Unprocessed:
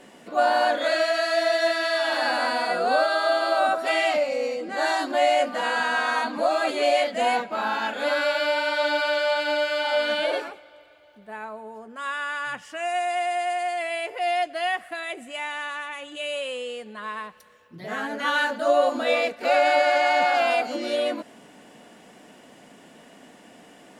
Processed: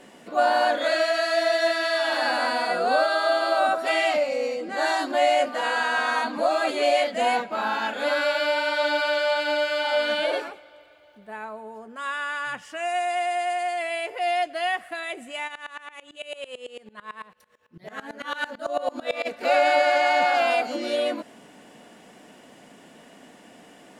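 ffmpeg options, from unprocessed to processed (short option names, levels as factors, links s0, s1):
-filter_complex "[0:a]asettb=1/sr,asplit=3[s0][s1][s2];[s0]atrim=end=5.464[s3];[s1]atrim=start=5.46:end=5.98,asetpts=PTS-STARTPTS,afade=t=in:d=0.004:c=qsin,afade=t=out:st=0.516:d=0.004:c=qsin,highpass=f=250:w=0.5412,highpass=f=250:w=1.3066[s4];[s2]atrim=start=5.976[s5];[s3][s4]acrossfade=d=0.004:c1=hsin:c2=qsin[s6];[s6][s5]acrossfade=d=0.004:c1=qsin:c2=hsin,asplit=3[s7][s8][s9];[s7]afade=t=out:st=15.47:d=0.02[s10];[s8]aeval=exprs='val(0)*pow(10,-22*if(lt(mod(-9*n/s,1),2*abs(-9)/1000),1-mod(-9*n/s,1)/(2*abs(-9)/1000),(mod(-9*n/s,1)-2*abs(-9)/1000)/(1-2*abs(-9)/1000))/20)':c=same,afade=t=in:st=15.47:d=0.02,afade=t=out:st=19.25:d=0.02[s11];[s9]afade=t=in:st=19.25:d=0.02[s12];[s10][s11][s12]amix=inputs=3:normalize=0"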